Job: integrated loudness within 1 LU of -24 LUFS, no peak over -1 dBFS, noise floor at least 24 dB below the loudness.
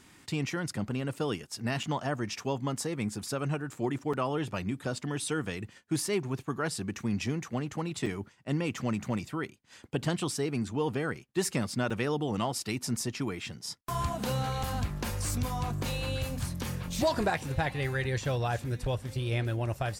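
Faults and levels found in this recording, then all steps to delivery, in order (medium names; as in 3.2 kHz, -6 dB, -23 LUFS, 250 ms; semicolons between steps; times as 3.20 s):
dropouts 5; longest dropout 4.9 ms; loudness -33.0 LUFS; peak level -17.5 dBFS; loudness target -24.0 LUFS
-> interpolate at 1.83/4.13/8.06/11.90/14.63 s, 4.9 ms; trim +9 dB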